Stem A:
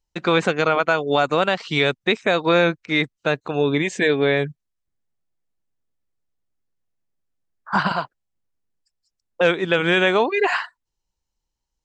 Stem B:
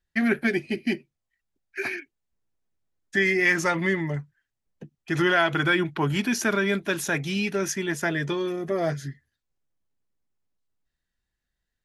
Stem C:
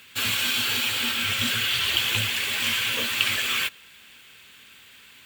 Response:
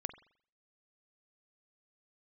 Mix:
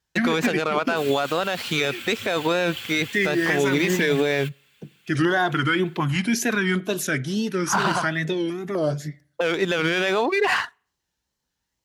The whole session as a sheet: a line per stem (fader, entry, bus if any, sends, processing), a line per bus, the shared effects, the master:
+2.0 dB, 0.00 s, send -22.5 dB, high shelf 4600 Hz +6 dB; vibrato 2.4 Hz 56 cents; running maximum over 3 samples
+0.5 dB, 0.00 s, send -7 dB, wow and flutter 140 cents; stepped notch 4 Hz 430–2400 Hz
-10.0 dB, 0.80 s, no send, notch comb 320 Hz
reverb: on, pre-delay 43 ms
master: HPF 78 Hz; limiter -11.5 dBFS, peak gain reduction 10 dB

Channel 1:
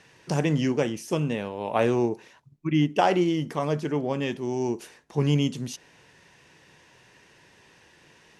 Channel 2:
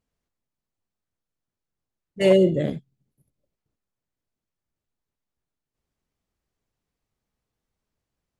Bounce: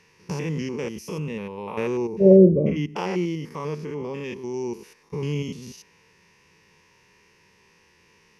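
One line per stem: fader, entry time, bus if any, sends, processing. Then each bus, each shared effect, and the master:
-2.0 dB, 0.00 s, no send, stepped spectrum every 0.1 s; bell 680 Hz -8 dB 0.47 oct
+3.0 dB, 0.00 s, no send, steep low-pass 660 Hz 36 dB/oct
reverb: off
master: ripple EQ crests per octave 0.83, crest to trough 8 dB

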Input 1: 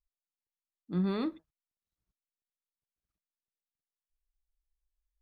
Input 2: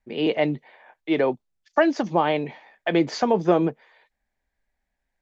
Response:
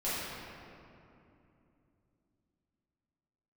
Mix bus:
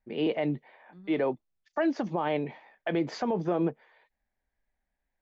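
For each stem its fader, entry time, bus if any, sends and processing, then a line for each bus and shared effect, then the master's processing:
-17.0 dB, 0.00 s, no send, auto duck -8 dB, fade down 1.95 s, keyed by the second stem
-3.5 dB, 0.00 s, no send, high shelf 4400 Hz -11.5 dB; wow and flutter 29 cents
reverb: off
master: limiter -19 dBFS, peak gain reduction 7.5 dB

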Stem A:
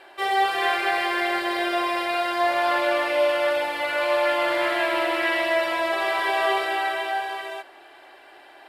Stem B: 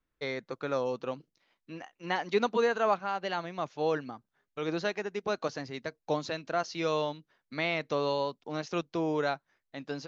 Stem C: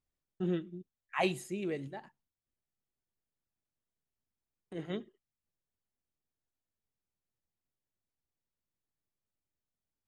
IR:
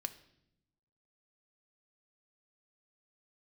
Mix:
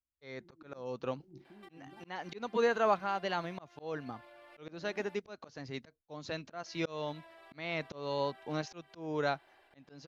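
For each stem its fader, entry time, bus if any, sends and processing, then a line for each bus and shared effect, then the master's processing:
-16.0 dB, 1.45 s, muted 5.15–6.66, no send, limiter -21.5 dBFS, peak gain reduction 10.5 dB; compressor 3:1, threshold -42 dBFS, peak gain reduction 12 dB
-1.5 dB, 0.00 s, no send, dry
-2.5 dB, 0.00 s, no send, negative-ratio compressor -44 dBFS, ratio -1; vocal tract filter u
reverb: off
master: gate with hold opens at -55 dBFS; bell 65 Hz +13.5 dB 1.3 oct; auto swell 0.325 s

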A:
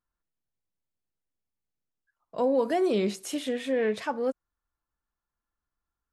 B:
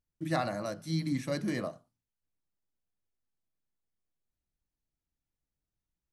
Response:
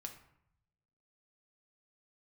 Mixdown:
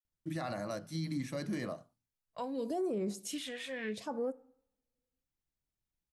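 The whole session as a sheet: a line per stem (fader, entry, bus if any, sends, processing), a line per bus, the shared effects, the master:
-5.5 dB, 0.00 s, send -10 dB, gate -41 dBFS, range -33 dB; phaser stages 2, 0.76 Hz, lowest notch 290–3500 Hz
-2.5 dB, 0.05 s, no send, dry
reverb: on, RT60 0.70 s, pre-delay 4 ms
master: limiter -28.5 dBFS, peak gain reduction 10 dB

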